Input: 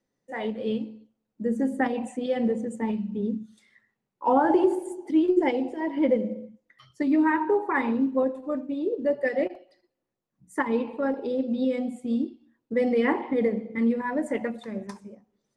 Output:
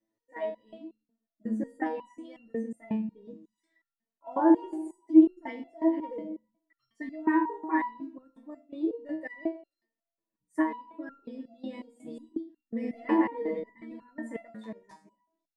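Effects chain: 11.86–14.09 reverse delay 0.108 s, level -1.5 dB; small resonant body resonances 310/640/960/1800 Hz, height 15 dB, ringing for 70 ms; stepped resonator 5.5 Hz 110–1400 Hz

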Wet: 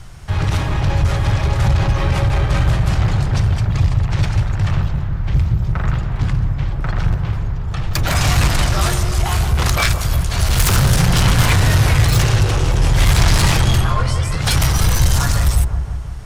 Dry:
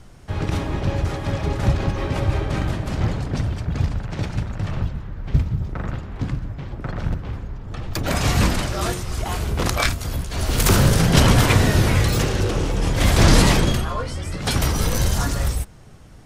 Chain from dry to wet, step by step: in parallel at -2 dB: limiter -14 dBFS, peak gain reduction 11.5 dB; 3.7–4.1 on the sum: notch 1500 Hz, Q 6.2; soft clip -13 dBFS, distortion -12 dB; ten-band EQ 125 Hz +3 dB, 250 Hz -11 dB, 500 Hz -6 dB; dark delay 0.172 s, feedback 62%, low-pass 940 Hz, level -6 dB; gain +4 dB

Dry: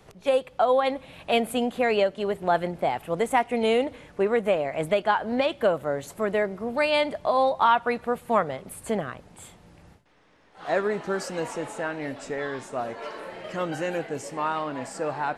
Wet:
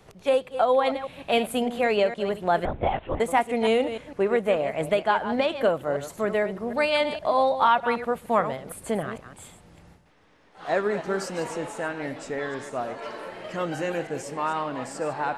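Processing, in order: reverse delay 0.153 s, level -10.5 dB; 2.65–3.2 LPC vocoder at 8 kHz whisper

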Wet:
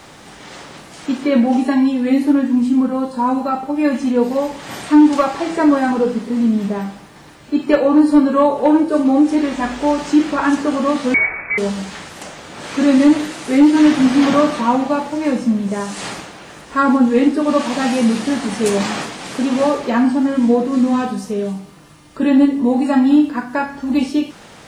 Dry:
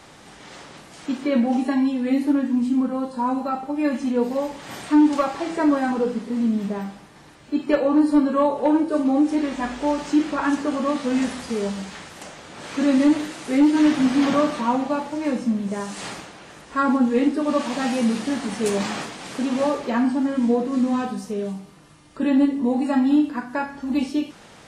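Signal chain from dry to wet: requantised 12-bit, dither triangular; 11.14–11.58 inverted band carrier 2500 Hz; gain +6 dB

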